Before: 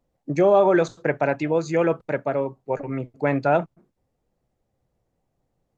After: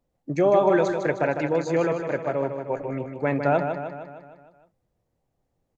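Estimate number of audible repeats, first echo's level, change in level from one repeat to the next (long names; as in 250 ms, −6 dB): 6, −7.0 dB, −5.0 dB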